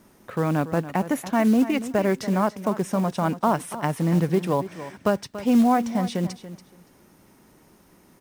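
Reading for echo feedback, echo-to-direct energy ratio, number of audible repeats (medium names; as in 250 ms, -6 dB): 17%, -13.5 dB, 2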